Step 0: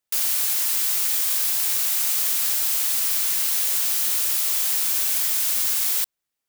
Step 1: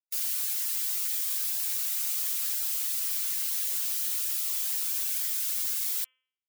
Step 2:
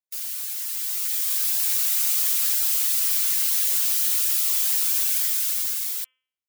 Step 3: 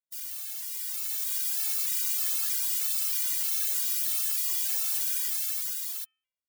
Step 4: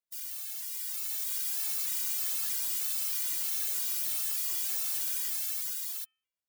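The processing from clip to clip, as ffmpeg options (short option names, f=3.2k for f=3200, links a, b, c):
-af "afftdn=nr=23:nf=-37,highpass=54,bandreject=f=257.7:t=h:w=4,bandreject=f=515.4:t=h:w=4,bandreject=f=773.1:t=h:w=4,bandreject=f=1.0308k:t=h:w=4,bandreject=f=1.2885k:t=h:w=4,bandreject=f=1.5462k:t=h:w=4,bandreject=f=1.8039k:t=h:w=4,bandreject=f=2.0616k:t=h:w=4,bandreject=f=2.3193k:t=h:w=4,bandreject=f=2.577k:t=h:w=4,bandreject=f=2.8347k:t=h:w=4,bandreject=f=3.0924k:t=h:w=4,bandreject=f=3.3501k:t=h:w=4,volume=-7.5dB"
-af "dynaudnorm=f=250:g=9:m=9dB,volume=-1dB"
-af "afftfilt=real='re*gt(sin(2*PI*1.6*pts/sr)*(1-2*mod(floor(b*sr/1024/230),2)),0)':imag='im*gt(sin(2*PI*1.6*pts/sr)*(1-2*mod(floor(b*sr/1024/230),2)),0)':win_size=1024:overlap=0.75,volume=-3dB"
-af "asoftclip=type=tanh:threshold=-24dB,volume=-1.5dB"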